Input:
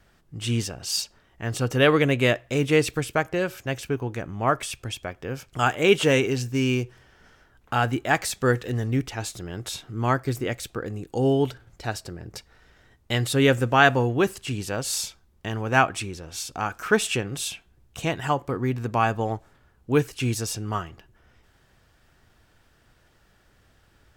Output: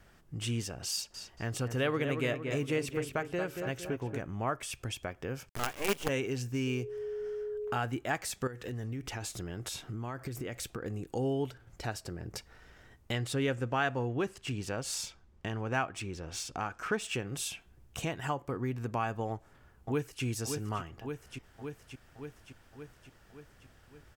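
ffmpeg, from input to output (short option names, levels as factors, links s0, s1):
-filter_complex "[0:a]asettb=1/sr,asplit=3[s0][s1][s2];[s0]atrim=end=0.914[s3];[s1]atrim=start=0.91:end=4.24,asetpts=PTS-STARTPTS,afade=t=in:d=0.004:c=qsin,afade=t=out:st=3.326:d=0.004:c=qsin,asplit=2[s4][s5];[s5]adelay=230,lowpass=f=2100:p=1,volume=0.422,asplit=2[s6][s7];[s7]adelay=230,lowpass=f=2100:p=1,volume=0.46,asplit=2[s8][s9];[s9]adelay=230,lowpass=f=2100:p=1,volume=0.46,asplit=2[s10][s11];[s11]adelay=230,lowpass=f=2100:p=1,volume=0.46,asplit=2[s12][s13];[s13]adelay=230,lowpass=f=2100:p=1,volume=0.46[s14];[s4][s6][s8][s10][s12][s14]amix=inputs=6:normalize=0,atrim=end_sample=146853[s15];[s2]atrim=start=4.236[s16];[s3][s15]acrossfade=d=0.004:c1=hsin:c2=qsin[s17];[s17][s16]acrossfade=d=0.004:c1=qsin:c2=hsin,asettb=1/sr,asplit=3[s18][s19][s20];[s18]atrim=end=5.494[s21];[s19]atrim=start=5.49:end=6.09,asetpts=PTS-STARTPTS,afade=t=in:d=0.004:c=qsin,afade=t=out:st=0.596:d=0.004:c=qsin,acrusher=bits=3:dc=4:mix=0:aa=0.000001[s22];[s20]atrim=start=6.086[s23];[s21][s22]acrossfade=d=0.004:c1=hsin:c2=qsin[s24];[s24][s23]acrossfade=d=0.004:c1=qsin:c2=hsin,asettb=1/sr,asplit=3[s25][s26][s27];[s25]atrim=end=6.674[s28];[s26]atrim=start=6.67:end=7.77,asetpts=PTS-STARTPTS,afade=t=in:d=0.004:c=qsin,afade=t=out:st=1.096:d=0.004:c=qsin,aeval=exprs='val(0)+0.0282*sin(2*PI*420*n/s)':c=same[s29];[s27]atrim=start=7.766[s30];[s28][s29]acrossfade=d=0.004:c1=hsin:c2=qsin[s31];[s31][s30]acrossfade=d=0.004:c1=qsin:c2=hsin,asettb=1/sr,asplit=3[s32][s33][s34];[s32]atrim=end=8.474[s35];[s33]atrim=start=8.47:end=10.86,asetpts=PTS-STARTPTS,afade=t=in:d=0.004:c=qsin,afade=t=out:st=2.386:d=0.004:c=qsin,acompressor=threshold=0.0316:ratio=8:attack=3.2:release=140:knee=1:detection=peak[s36];[s34]atrim=start=10.856[s37];[s35][s36]acrossfade=d=0.004:c1=hsin:c2=qsin[s38];[s38][s37]acrossfade=d=0.004:c1=qsin:c2=hsin,asettb=1/sr,asplit=3[s39][s40][s41];[s39]atrim=end=13.124[s42];[s40]atrim=start=13.12:end=17.15,asetpts=PTS-STARTPTS,afade=t=in:d=0.004:c=qsin,afade=t=out:st=4.026:d=0.004:c=qsin,adynamicsmooth=sensitivity=6.5:basefreq=6800[s43];[s41]atrim=start=17.146[s44];[s42][s43]acrossfade=d=0.004:c1=hsin:c2=qsin[s45];[s45][s44]acrossfade=d=0.004:c1=qsin:c2=hsin,asplit=2[s46][s47];[s47]afade=t=in:st=19.3:d=0.01,afade=t=out:st=20.24:d=0.01,aecho=0:1:570|1140|1710|2280|2850|3420|3990:0.316228|0.189737|0.113842|0.0683052|0.0409831|0.0245899|0.0147539[s48];[s46][s48]amix=inputs=2:normalize=0,equalizer=f=3900:t=o:w=0.46:g=-3.5,acompressor=threshold=0.0126:ratio=2"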